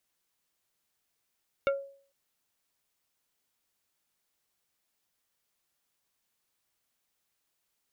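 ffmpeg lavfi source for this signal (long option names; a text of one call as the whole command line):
ffmpeg -f lavfi -i "aevalsrc='0.0841*pow(10,-3*t/0.49)*sin(2*PI*553*t)+0.0501*pow(10,-3*t/0.163)*sin(2*PI*1382.5*t)+0.0299*pow(10,-3*t/0.093)*sin(2*PI*2212*t)+0.0178*pow(10,-3*t/0.071)*sin(2*PI*2765*t)+0.0106*pow(10,-3*t/0.052)*sin(2*PI*3594.5*t)':duration=0.45:sample_rate=44100" out.wav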